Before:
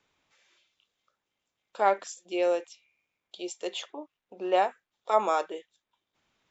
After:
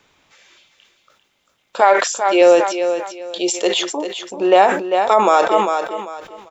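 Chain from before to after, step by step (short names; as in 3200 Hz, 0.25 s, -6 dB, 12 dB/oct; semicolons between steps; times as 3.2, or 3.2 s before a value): 1.8–2.4 HPF 600 Hz -> 260 Hz 12 dB/oct; feedback echo 0.395 s, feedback 26%, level -9.5 dB; maximiser +17 dB; sustainer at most 80 dB/s; gain -1 dB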